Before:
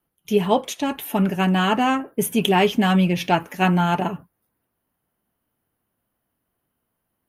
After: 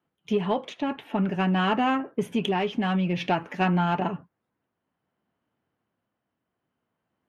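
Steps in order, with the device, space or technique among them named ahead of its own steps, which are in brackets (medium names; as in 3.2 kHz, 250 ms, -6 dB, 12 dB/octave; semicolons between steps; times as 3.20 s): AM radio (band-pass 100–3500 Hz; compression 4:1, threshold -19 dBFS, peak gain reduction 6 dB; saturation -11 dBFS, distortion -26 dB; tremolo 0.55 Hz, depth 28%); 0.69–1.25 s: tone controls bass +1 dB, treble -8 dB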